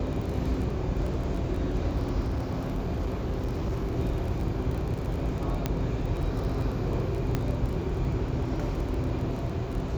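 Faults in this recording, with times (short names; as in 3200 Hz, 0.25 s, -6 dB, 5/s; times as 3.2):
crackle 25/s -33 dBFS
2.21–3.98 clipped -25 dBFS
5.66 pop -13 dBFS
7.35 pop -14 dBFS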